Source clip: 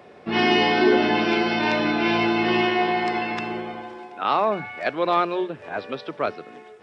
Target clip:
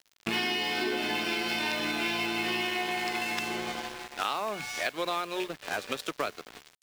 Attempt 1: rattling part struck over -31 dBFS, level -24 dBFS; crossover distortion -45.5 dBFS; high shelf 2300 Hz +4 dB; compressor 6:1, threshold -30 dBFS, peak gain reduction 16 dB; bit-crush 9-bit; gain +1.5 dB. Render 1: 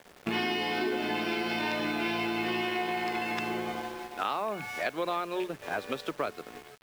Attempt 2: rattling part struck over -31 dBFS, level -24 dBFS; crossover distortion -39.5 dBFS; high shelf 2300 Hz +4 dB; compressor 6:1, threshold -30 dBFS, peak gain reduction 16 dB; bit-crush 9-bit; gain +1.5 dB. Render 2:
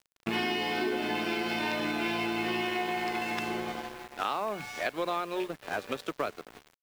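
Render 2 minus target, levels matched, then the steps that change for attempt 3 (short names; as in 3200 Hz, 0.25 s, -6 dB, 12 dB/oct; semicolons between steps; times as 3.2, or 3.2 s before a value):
4000 Hz band -3.5 dB
change: high shelf 2300 Hz +15 dB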